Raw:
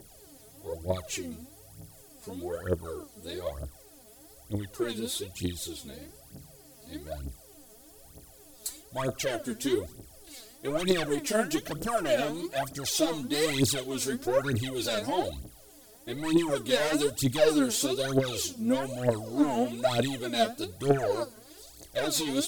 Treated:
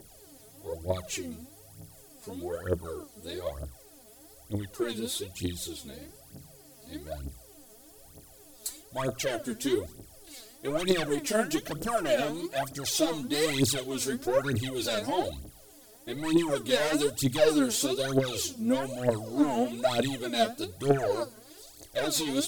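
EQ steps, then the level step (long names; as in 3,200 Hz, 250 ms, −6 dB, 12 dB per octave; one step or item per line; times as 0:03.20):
mains-hum notches 60/120/180 Hz
0.0 dB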